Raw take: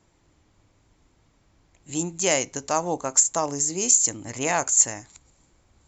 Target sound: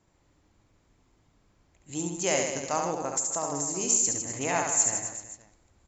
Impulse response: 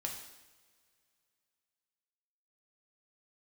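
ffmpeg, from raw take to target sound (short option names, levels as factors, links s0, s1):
-filter_complex "[0:a]aecho=1:1:70|154|254.8|375.8|520.9:0.631|0.398|0.251|0.158|0.1,asplit=2[s0][s1];[1:a]atrim=start_sample=2205,lowpass=2800[s2];[s1][s2]afir=irnorm=-1:irlink=0,volume=0.251[s3];[s0][s3]amix=inputs=2:normalize=0,asettb=1/sr,asplit=3[s4][s5][s6];[s4]atrim=end=2.884[s7];[s5]atrim=start=2.88:end=3.81,asetpts=PTS-STARTPTS,afade=t=in:d=0.004:c=qsin,afade=t=out:st=0.926:d=0.004:c=qsin,acompressor=threshold=0.112:ratio=6[s8];[s6]atrim=start=3.806[s9];[s7][s8]acrossfade=d=0.004:c1=hsin:c2=qsin[s10];[s10][s9]acrossfade=d=0.004:c1=qsin:c2=hsin,volume=0.473"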